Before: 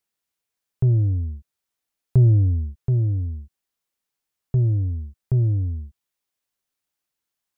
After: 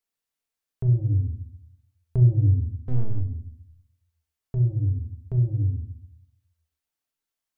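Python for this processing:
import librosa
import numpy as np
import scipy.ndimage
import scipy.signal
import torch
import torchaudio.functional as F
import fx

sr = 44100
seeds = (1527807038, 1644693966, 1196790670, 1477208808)

y = fx.halfwave_gain(x, sr, db=-12.0, at=(2.8, 3.2))
y = fx.peak_eq(y, sr, hz=180.0, db=-8.0, octaves=0.36)
y = fx.room_shoebox(y, sr, seeds[0], volume_m3=650.0, walls='furnished', distance_m=1.6)
y = y * 10.0 ** (-5.5 / 20.0)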